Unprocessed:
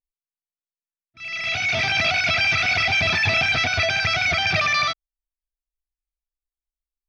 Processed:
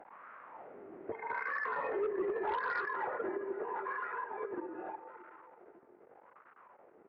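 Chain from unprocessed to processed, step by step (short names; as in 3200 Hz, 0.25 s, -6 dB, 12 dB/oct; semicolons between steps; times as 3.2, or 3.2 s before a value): infinite clipping; Doppler pass-by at 2.2, 15 m/s, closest 5.8 m; wah 0.81 Hz 650–1800 Hz, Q 5.2; on a send: echo with dull and thin repeats by turns 0.209 s, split 1200 Hz, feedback 61%, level -10.5 dB; on the sum: mistuned SSB -240 Hz 410–2900 Hz; tilt shelf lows +3.5 dB, about 1100 Hz; formant shift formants -3 st; in parallel at -3.5 dB: sine folder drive 9 dB, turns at -20.5 dBFS; on the sum: compressor 3:1, threshold -32 dBFS, peak gain reduction 7.5 dB; gain -2 dB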